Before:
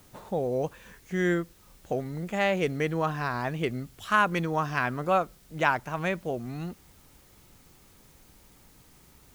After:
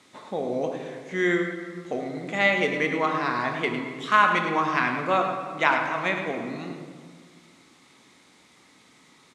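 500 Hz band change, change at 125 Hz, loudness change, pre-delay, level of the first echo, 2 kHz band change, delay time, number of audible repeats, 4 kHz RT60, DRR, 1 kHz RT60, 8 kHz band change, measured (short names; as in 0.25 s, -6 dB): +2.0 dB, -4.5 dB, +4.0 dB, 5 ms, -9.0 dB, +6.0 dB, 0.105 s, 1, 1.1 s, 2.5 dB, 1.7 s, n/a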